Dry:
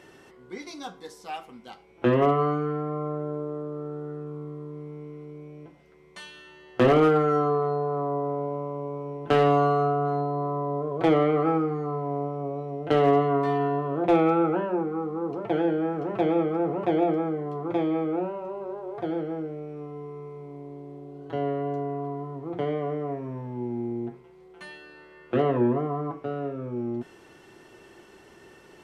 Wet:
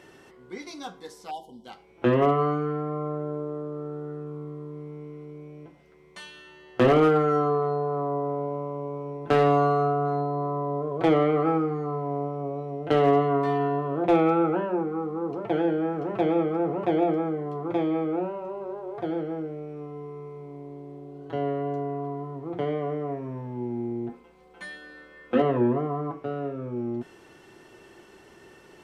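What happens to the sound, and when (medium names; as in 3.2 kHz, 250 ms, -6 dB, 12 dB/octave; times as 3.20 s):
1.31–1.65 s: spectral selection erased 1–2.9 kHz
9.11–10.56 s: band-stop 3 kHz
24.09–25.42 s: comb 3.9 ms, depth 86%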